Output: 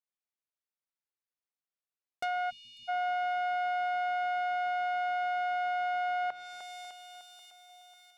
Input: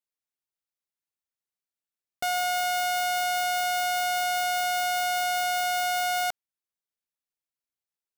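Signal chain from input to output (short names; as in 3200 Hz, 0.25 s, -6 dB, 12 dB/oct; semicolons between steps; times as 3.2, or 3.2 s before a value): notches 60/120/180/240/300/360 Hz; on a send: split-band echo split 2500 Hz, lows 0.302 s, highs 0.6 s, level -9.5 dB; on the sum: treble ducked by the level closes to 2000 Hz, closed at -24 dBFS; tone controls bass -6 dB, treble -7 dB; thinning echo 0.544 s, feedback 64%, high-pass 280 Hz, level -19 dB; spectral delete 2.5–2.89, 250–2200 Hz; gain -4 dB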